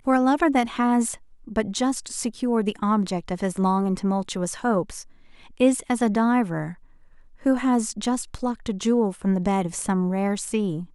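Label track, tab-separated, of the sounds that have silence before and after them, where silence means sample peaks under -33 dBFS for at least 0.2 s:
1.480000	5.020000	sound
5.600000	6.720000	sound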